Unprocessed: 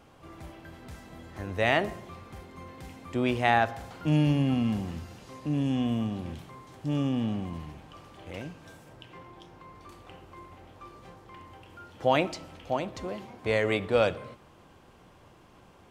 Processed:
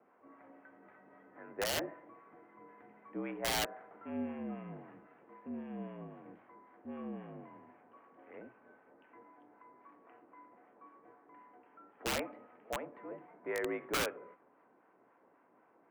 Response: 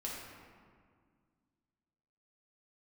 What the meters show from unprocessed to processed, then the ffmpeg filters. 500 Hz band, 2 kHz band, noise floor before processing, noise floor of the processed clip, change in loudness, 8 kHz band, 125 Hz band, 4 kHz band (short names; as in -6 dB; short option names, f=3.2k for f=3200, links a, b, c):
-12.0 dB, -10.0 dB, -56 dBFS, -68 dBFS, -11.0 dB, n/a, -22.5 dB, -4.0 dB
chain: -filter_complex "[0:a]acrossover=split=800[a][b];[a]aeval=exprs='val(0)*(1-0.5/2+0.5/2*cos(2*PI*3.8*n/s))':c=same[c];[b]aeval=exprs='val(0)*(1-0.5/2-0.5/2*cos(2*PI*3.8*n/s))':c=same[d];[c][d]amix=inputs=2:normalize=0,highpass=f=310:t=q:w=0.5412,highpass=f=310:t=q:w=1.307,lowpass=f=2.1k:t=q:w=0.5176,lowpass=f=2.1k:t=q:w=0.7071,lowpass=f=2.1k:t=q:w=1.932,afreqshift=-53,aeval=exprs='(mod(11.2*val(0)+1,2)-1)/11.2':c=same,volume=-6.5dB"